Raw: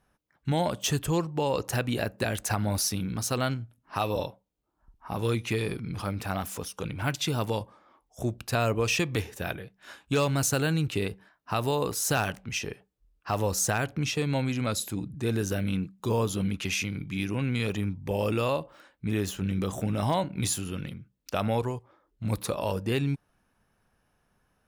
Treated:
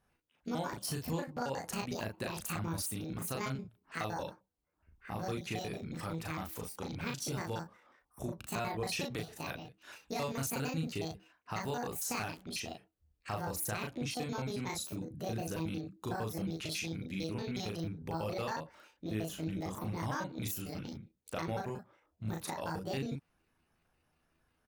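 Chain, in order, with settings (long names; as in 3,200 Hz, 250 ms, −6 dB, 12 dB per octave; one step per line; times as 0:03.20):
pitch shifter gated in a rhythm +8.5 semitones, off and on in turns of 91 ms
downward compressor 2 to 1, threshold −32 dBFS, peak gain reduction 6 dB
double-tracking delay 37 ms −3 dB
level −6.5 dB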